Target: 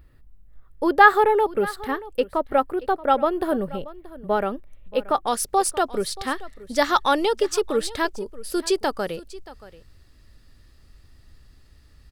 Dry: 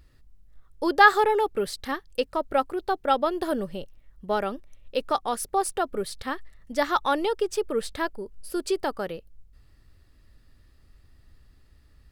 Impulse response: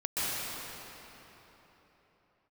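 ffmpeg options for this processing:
-af "asetnsamples=nb_out_samples=441:pad=0,asendcmd='5.27 equalizer g 4.5',equalizer=frequency=5800:width=0.77:gain=-12,aecho=1:1:629:0.119,volume=4dB"

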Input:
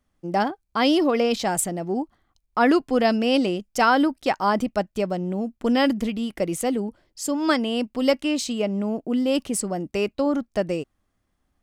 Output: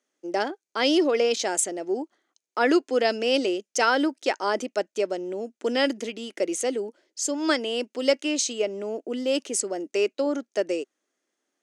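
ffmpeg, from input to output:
ffmpeg -i in.wav -af "highpass=frequency=320:width=0.5412,highpass=frequency=320:width=1.3066,equalizer=frequency=390:width_type=q:width=4:gain=3,equalizer=frequency=770:width_type=q:width=4:gain=-6,equalizer=frequency=1100:width_type=q:width=4:gain=-8,equalizer=frequency=6400:width_type=q:width=4:gain=9,lowpass=frequency=9800:width=0.5412,lowpass=frequency=9800:width=1.3066" out.wav

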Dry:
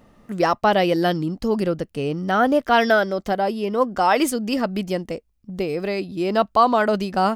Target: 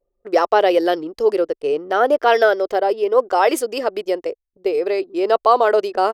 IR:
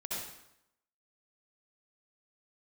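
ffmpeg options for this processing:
-af "lowshelf=frequency=280:width_type=q:width=3:gain=-13.5,anlmdn=1.58,atempo=1.2"

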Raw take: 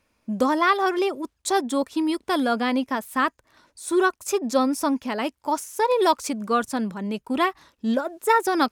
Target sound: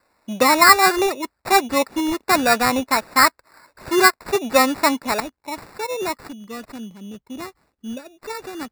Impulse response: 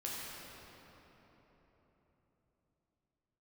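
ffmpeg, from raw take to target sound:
-af "asetnsamples=nb_out_samples=441:pad=0,asendcmd='5.2 equalizer g -2;6.23 equalizer g -10.5',equalizer=frequency=1100:width=0.39:gain=14,acrusher=samples=14:mix=1:aa=0.000001,volume=-4.5dB"

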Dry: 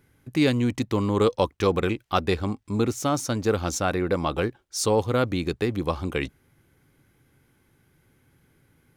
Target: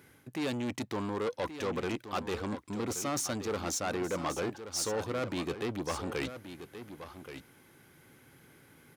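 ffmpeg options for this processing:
ffmpeg -i in.wav -af "areverse,acompressor=threshold=-31dB:ratio=6,areverse,asoftclip=type=tanh:threshold=-34dB,highpass=frequency=270:poles=1,aecho=1:1:1127:0.282,volume=7dB" out.wav

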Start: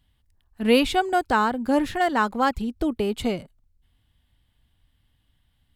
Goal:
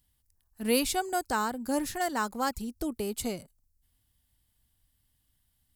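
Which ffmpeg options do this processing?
ffmpeg -i in.wav -af "aexciter=amount=6.4:drive=2.5:freq=4700,volume=-8.5dB" out.wav

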